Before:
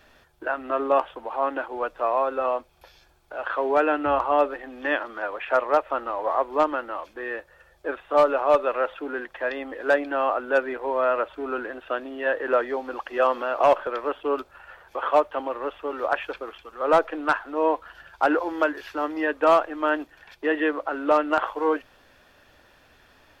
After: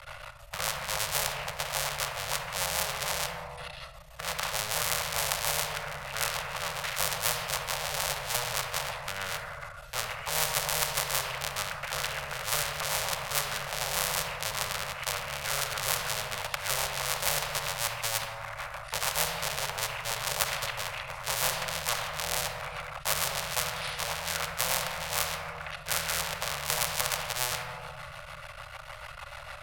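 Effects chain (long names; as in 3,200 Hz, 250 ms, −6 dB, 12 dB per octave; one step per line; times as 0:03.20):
sub-harmonics by changed cycles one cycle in 3, muted
Chebyshev band-stop filter 190–720 Hz, order 4
in parallel at +2.5 dB: speech leveller 2 s
on the sum: speed change −21%
rotating-speaker cabinet horn 6.7 Hz
on a send at −8 dB: convolution reverb RT60 1.1 s, pre-delay 3 ms
on the sum: every bin compressed towards the loudest bin 4 to 1
level −1.5 dB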